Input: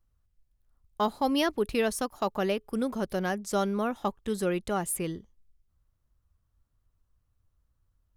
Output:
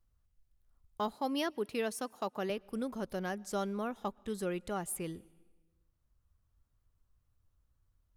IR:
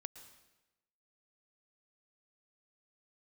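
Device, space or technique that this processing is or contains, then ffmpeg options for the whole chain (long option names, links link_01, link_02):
ducked reverb: -filter_complex "[0:a]asettb=1/sr,asplit=3[link_01][link_02][link_03];[link_01]atrim=end=1.134[link_04];[link_02]atrim=start=1.13:end=2.5,asetpts=PTS-STARTPTS,afade=type=in:duration=0.004:curve=qsin,afade=type=out:start_time=1.366:duration=0.004:curve=qsin,highpass=150[link_05];[link_03]atrim=start=2.496[link_06];[link_04][link_05]acrossfade=duration=0.004:curve1=hsin:curve2=qsin[link_07];[link_07][link_06]acrossfade=duration=0.004:curve1=qsin:curve2=hsin,asplit=3[link_08][link_09][link_10];[1:a]atrim=start_sample=2205[link_11];[link_09][link_11]afir=irnorm=-1:irlink=0[link_12];[link_10]apad=whole_len=360204[link_13];[link_12][link_13]sidechaincompress=threshold=-42dB:ratio=12:attack=22:release=1110,volume=5.5dB[link_14];[link_08][link_14]amix=inputs=2:normalize=0,volume=-8.5dB"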